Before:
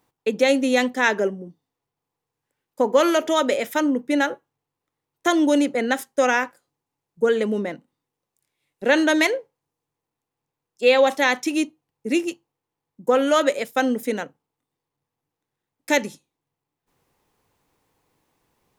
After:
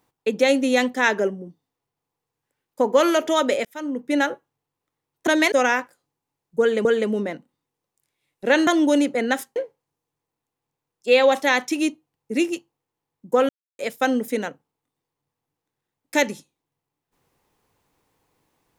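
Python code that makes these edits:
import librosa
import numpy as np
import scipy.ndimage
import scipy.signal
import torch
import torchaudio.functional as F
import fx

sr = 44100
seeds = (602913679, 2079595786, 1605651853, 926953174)

y = fx.edit(x, sr, fx.fade_in_span(start_s=3.65, length_s=0.52),
    fx.swap(start_s=5.27, length_s=0.89, other_s=9.06, other_length_s=0.25),
    fx.repeat(start_s=7.24, length_s=0.25, count=2),
    fx.silence(start_s=13.24, length_s=0.3), tone=tone)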